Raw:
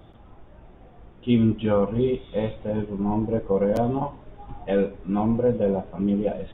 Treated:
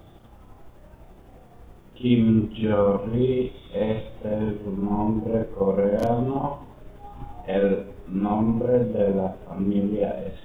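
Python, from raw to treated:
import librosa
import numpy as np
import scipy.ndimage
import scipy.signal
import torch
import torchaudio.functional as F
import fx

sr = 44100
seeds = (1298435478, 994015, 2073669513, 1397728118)

y = fx.quant_dither(x, sr, seeds[0], bits=12, dither='triangular')
y = fx.stretch_grains(y, sr, factor=1.6, grain_ms=170.0)
y = y * librosa.db_to_amplitude(1.5)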